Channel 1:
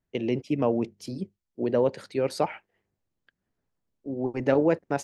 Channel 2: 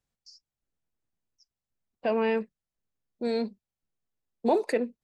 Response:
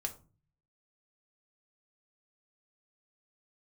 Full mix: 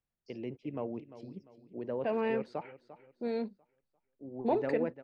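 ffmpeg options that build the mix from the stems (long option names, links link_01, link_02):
-filter_complex "[0:a]adelay=150,volume=-13dB,asplit=2[link_01][link_02];[link_02]volume=-14.5dB[link_03];[1:a]volume=-5.5dB[link_04];[link_03]aecho=0:1:347|694|1041|1388|1735:1|0.37|0.137|0.0507|0.0187[link_05];[link_01][link_04][link_05]amix=inputs=3:normalize=0,lowpass=2900"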